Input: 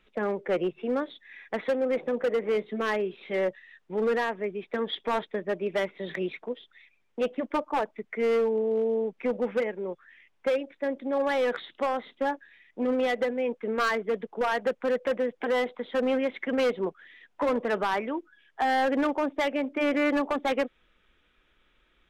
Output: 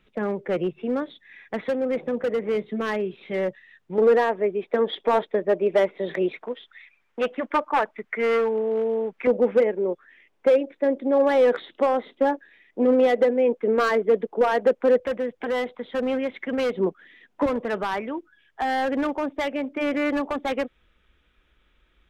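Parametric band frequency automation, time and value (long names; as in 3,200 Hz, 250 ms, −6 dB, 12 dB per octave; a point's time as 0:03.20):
parametric band +9.5 dB 2.1 octaves
110 Hz
from 0:03.98 530 Hz
from 0:06.41 1,500 Hz
from 0:09.27 400 Hz
from 0:15.00 63 Hz
from 0:16.75 240 Hz
from 0:17.46 62 Hz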